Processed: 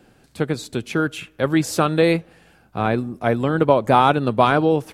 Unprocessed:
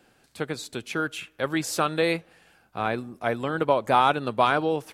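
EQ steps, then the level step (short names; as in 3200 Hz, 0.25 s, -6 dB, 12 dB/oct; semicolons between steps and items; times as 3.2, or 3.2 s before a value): low shelf 450 Hz +10 dB; +2.5 dB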